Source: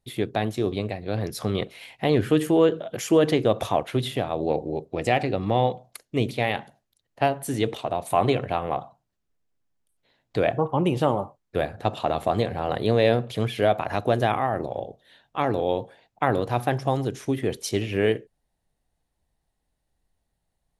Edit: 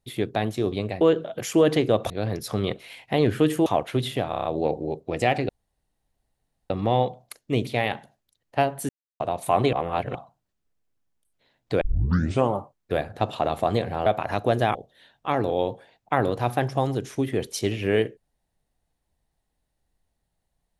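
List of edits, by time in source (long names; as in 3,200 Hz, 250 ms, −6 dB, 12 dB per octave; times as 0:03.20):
0:02.57–0:03.66: move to 0:01.01
0:04.30: stutter 0.03 s, 6 plays
0:05.34: splice in room tone 1.21 s
0:07.53–0:07.84: silence
0:08.37–0:08.79: reverse
0:10.45: tape start 0.68 s
0:12.70–0:13.67: remove
0:14.36–0:14.85: remove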